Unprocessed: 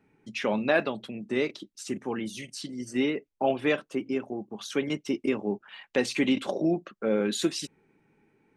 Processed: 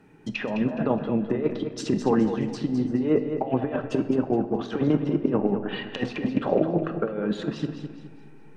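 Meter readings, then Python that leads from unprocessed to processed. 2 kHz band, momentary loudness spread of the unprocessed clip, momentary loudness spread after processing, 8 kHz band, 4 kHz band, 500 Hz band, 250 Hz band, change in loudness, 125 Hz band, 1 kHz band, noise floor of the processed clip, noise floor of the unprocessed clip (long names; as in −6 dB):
−4.5 dB, 11 LU, 8 LU, can't be measured, −4.5 dB, +3.0 dB, +5.5 dB, +3.5 dB, +10.5 dB, +3.0 dB, −45 dBFS, −75 dBFS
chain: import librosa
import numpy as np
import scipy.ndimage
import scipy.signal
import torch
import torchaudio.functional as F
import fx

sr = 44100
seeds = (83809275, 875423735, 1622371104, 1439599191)

p1 = fx.notch(x, sr, hz=2200.0, q=7.6)
p2 = fx.backlash(p1, sr, play_db=-33.0)
p3 = p1 + (p2 * librosa.db_to_amplitude(-9.0))
p4 = fx.dynamic_eq(p3, sr, hz=310.0, q=2.7, threshold_db=-36.0, ratio=4.0, max_db=-4)
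p5 = fx.over_compress(p4, sr, threshold_db=-29.0, ratio=-0.5)
p6 = fx.env_lowpass_down(p5, sr, base_hz=1100.0, full_db=-29.5)
p7 = p6 + fx.echo_feedback(p6, sr, ms=209, feedback_pct=36, wet_db=-9.0, dry=0)
p8 = fx.room_shoebox(p7, sr, seeds[0], volume_m3=900.0, walls='mixed', distance_m=0.54)
y = p8 * librosa.db_to_amplitude(7.0)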